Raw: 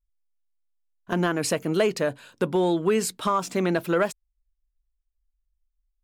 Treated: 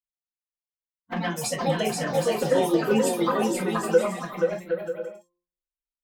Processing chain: expander on every frequency bin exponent 2; high-pass 75 Hz 6 dB/octave; de-hum 177.3 Hz, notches 6; transient shaper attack +3 dB, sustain -1 dB; touch-sensitive flanger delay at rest 6.5 ms, full sweep at -20 dBFS; ever faster or slower copies 228 ms, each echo +4 st, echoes 3, each echo -6 dB; bouncing-ball echo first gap 480 ms, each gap 0.6×, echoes 5; gated-style reverb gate 80 ms falling, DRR -0.5 dB

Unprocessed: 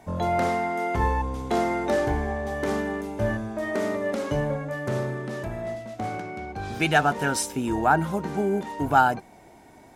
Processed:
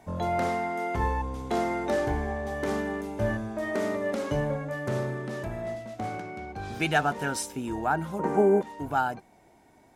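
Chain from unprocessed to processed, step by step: 8.19–8.62 s: graphic EQ 250/500/1000/2000/4000/8000 Hz +7/+12/+10/+5/-8/+6 dB; gain riding within 3 dB 2 s; trim -5 dB

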